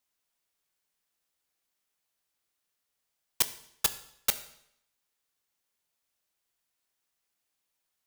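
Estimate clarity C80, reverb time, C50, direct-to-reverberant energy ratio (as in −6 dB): 16.5 dB, 0.75 s, 14.0 dB, 11.0 dB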